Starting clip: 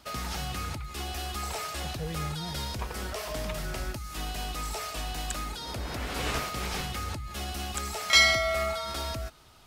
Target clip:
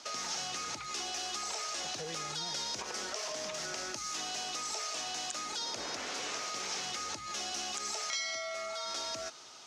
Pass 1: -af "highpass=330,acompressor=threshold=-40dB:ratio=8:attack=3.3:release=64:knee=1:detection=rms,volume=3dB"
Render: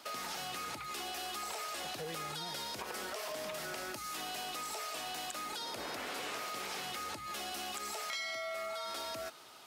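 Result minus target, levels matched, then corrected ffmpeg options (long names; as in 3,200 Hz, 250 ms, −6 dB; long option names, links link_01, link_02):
8,000 Hz band −4.0 dB
-af "highpass=330,acompressor=threshold=-40dB:ratio=8:attack=3.3:release=64:knee=1:detection=rms,lowpass=frequency=6200:width_type=q:width=3.8,volume=3dB"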